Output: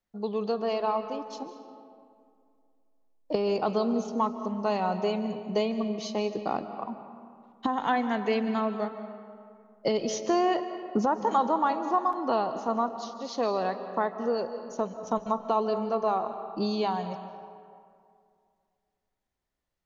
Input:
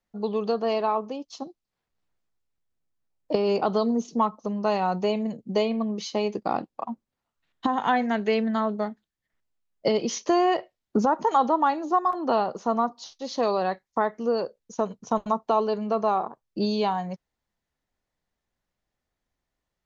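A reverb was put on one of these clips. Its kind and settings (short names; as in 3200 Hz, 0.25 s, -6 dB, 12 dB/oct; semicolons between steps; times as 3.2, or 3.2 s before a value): digital reverb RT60 2.3 s, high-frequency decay 0.55×, pre-delay 0.11 s, DRR 9.5 dB; gain -3.5 dB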